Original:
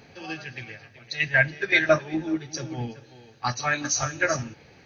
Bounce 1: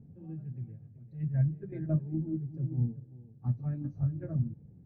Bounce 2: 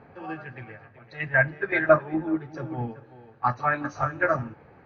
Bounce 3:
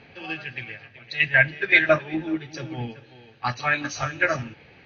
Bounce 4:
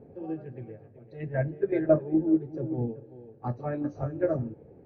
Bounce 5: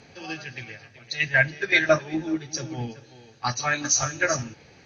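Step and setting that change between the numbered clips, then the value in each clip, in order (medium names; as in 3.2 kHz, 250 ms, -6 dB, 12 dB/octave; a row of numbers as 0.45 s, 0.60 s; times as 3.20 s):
resonant low-pass, frequency: 170 Hz, 1.2 kHz, 2.9 kHz, 450 Hz, 7.8 kHz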